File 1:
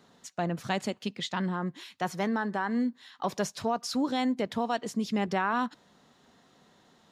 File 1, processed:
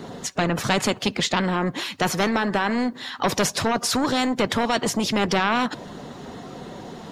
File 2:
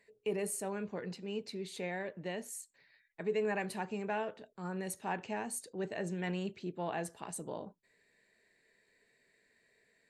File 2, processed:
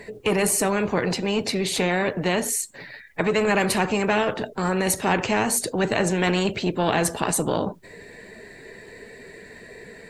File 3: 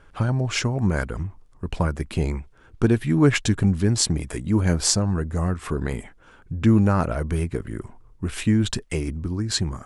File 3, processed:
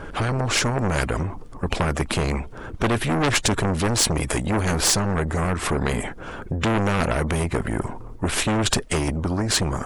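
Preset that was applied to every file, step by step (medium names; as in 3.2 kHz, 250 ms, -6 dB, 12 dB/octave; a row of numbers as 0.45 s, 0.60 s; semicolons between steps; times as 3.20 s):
coarse spectral quantiser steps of 15 dB; tilt shelf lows +6 dB; saturation -17 dBFS; spectrum-flattening compressor 2:1; normalise loudness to -23 LUFS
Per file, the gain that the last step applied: +10.5 dB, +14.0 dB, +13.0 dB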